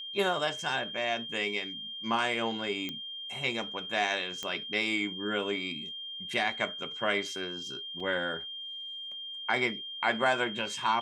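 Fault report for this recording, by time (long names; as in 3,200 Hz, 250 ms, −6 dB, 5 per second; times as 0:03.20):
whistle 3,200 Hz −38 dBFS
0:02.89: click −21 dBFS
0:04.43: click −20 dBFS
0:08.00: drop-out 3.9 ms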